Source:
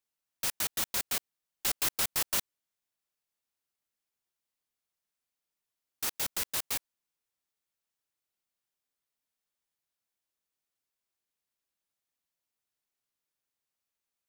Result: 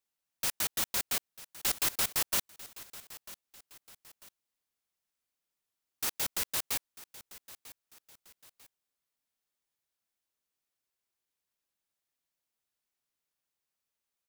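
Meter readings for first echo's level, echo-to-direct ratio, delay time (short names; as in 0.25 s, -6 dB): -17.5 dB, -17.0 dB, 0.945 s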